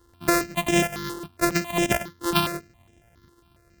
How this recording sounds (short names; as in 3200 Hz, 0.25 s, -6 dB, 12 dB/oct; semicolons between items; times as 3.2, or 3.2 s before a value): a buzz of ramps at a fixed pitch in blocks of 128 samples; notches that jump at a steady rate 7.3 Hz 650–4400 Hz